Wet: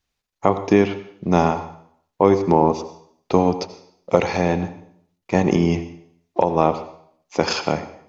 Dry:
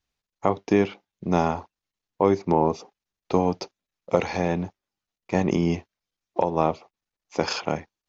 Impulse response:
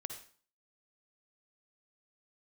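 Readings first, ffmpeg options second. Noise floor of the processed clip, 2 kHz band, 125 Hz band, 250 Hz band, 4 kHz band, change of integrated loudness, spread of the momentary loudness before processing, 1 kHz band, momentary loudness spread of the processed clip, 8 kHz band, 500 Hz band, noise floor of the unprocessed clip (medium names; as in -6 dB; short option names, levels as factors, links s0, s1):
-79 dBFS, +5.0 dB, +5.0 dB, +5.0 dB, +5.0 dB, +5.0 dB, 11 LU, +5.0 dB, 13 LU, no reading, +5.0 dB, under -85 dBFS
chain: -filter_complex "[0:a]asplit=2[s0][s1];[1:a]atrim=start_sample=2205,afade=t=out:st=0.44:d=0.01,atrim=end_sample=19845,asetrate=29988,aresample=44100[s2];[s1][s2]afir=irnorm=-1:irlink=0,volume=0.668[s3];[s0][s3]amix=inputs=2:normalize=0,volume=1.12"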